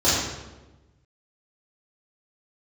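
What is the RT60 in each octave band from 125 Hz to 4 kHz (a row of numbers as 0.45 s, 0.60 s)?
1.7 s, 1.4 s, 1.2 s, 1.0 s, 0.90 s, 0.80 s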